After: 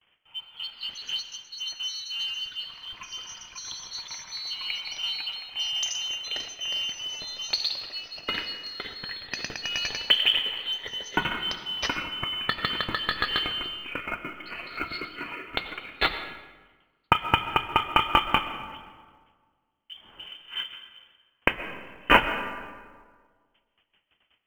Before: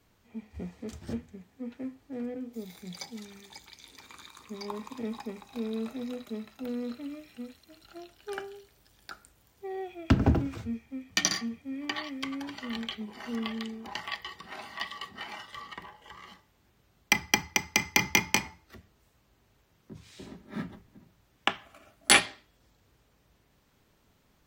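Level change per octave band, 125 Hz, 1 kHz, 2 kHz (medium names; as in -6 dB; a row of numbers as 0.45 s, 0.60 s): -5.5 dB, +9.0 dB, +3.5 dB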